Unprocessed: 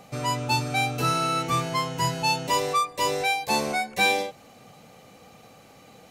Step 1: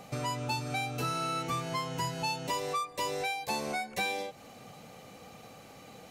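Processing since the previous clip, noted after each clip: compressor 3:1, threshold -33 dBFS, peak gain reduction 12 dB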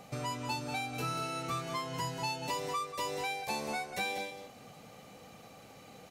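echo 0.19 s -8.5 dB; gain -3 dB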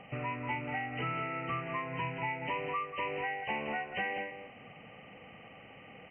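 nonlinear frequency compression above 1800 Hz 4:1

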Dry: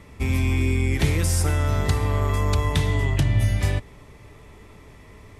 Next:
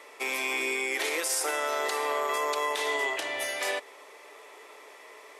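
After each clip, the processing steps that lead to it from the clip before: inverse Chebyshev high-pass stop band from 170 Hz, stop band 50 dB; limiter -23 dBFS, peak gain reduction 10.5 dB; gain +3.5 dB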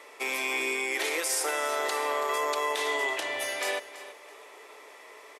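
feedback echo 0.33 s, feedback 27%, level -15 dB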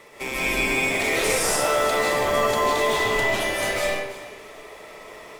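in parallel at -6 dB: decimation with a swept rate 27×, swing 60% 0.53 Hz; on the sum: digital reverb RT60 0.71 s, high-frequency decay 0.8×, pre-delay 0.115 s, DRR -5 dB

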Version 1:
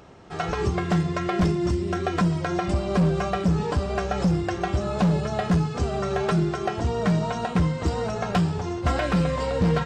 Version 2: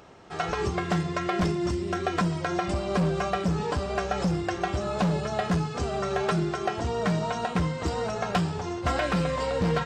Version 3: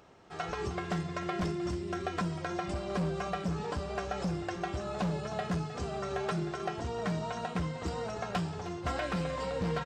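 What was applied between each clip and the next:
low shelf 300 Hz -6.5 dB
echo 0.31 s -14.5 dB; gain -7.5 dB

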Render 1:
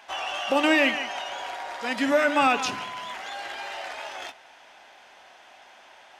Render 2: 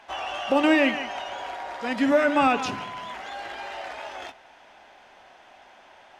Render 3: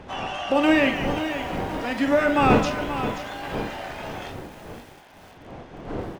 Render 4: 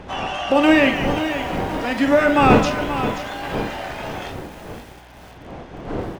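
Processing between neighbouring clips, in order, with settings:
tilt -2 dB/oct
wind noise 500 Hz -32 dBFS; doubler 42 ms -9 dB; lo-fi delay 0.53 s, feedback 35%, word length 7-bit, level -10 dB
hum 60 Hz, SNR 28 dB; gain +4.5 dB

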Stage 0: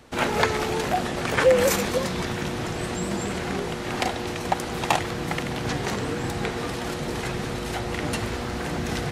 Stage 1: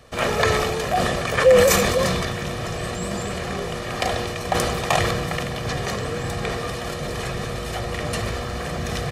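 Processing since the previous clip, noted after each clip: comb 1.7 ms, depth 56%; sustainer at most 26 dB/s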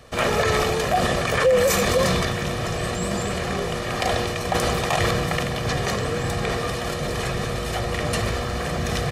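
limiter -12.5 dBFS, peak gain reduction 9.5 dB; gain +2 dB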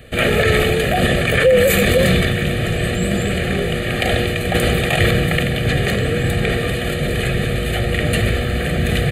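fixed phaser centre 2400 Hz, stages 4; gain +8.5 dB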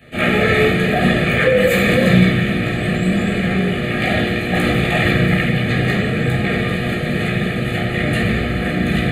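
reverb RT60 0.70 s, pre-delay 12 ms, DRR -8.5 dB; gain -10.5 dB

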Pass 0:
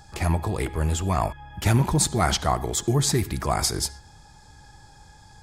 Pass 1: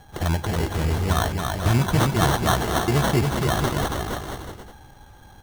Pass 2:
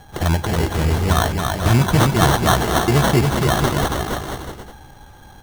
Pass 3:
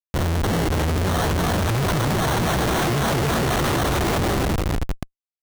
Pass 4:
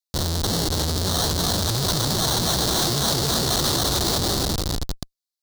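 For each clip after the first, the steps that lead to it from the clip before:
sample-and-hold 18×; on a send: bouncing-ball echo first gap 0.28 s, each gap 0.75×, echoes 5
notches 50/100 Hz; gain +5 dB
feedback echo 0.298 s, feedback 56%, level -11 dB; Schmitt trigger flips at -28 dBFS; gain -1.5 dB
resonant high shelf 3200 Hz +9 dB, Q 3; gain -3.5 dB

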